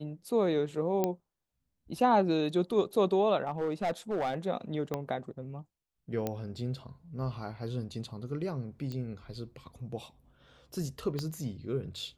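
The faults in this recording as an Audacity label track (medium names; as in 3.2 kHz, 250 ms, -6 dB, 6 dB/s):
1.040000	1.040000	pop -15 dBFS
3.470000	4.340000	clipped -26.5 dBFS
4.940000	4.940000	pop -19 dBFS
6.270000	6.270000	pop -18 dBFS
8.920000	8.920000	pop -27 dBFS
11.190000	11.190000	pop -21 dBFS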